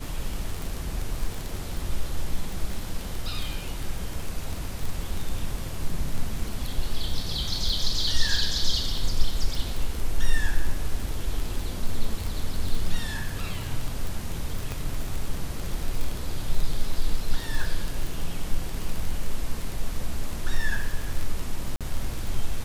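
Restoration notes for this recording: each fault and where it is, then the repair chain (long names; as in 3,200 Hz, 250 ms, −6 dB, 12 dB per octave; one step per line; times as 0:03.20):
surface crackle 27 per second −26 dBFS
0:14.72: click
0:21.76–0:21.81: drop-out 47 ms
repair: click removal
repair the gap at 0:21.76, 47 ms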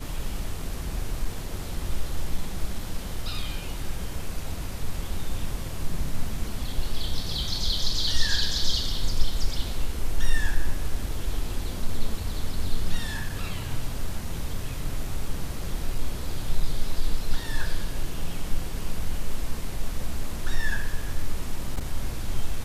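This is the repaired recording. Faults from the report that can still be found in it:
none of them is left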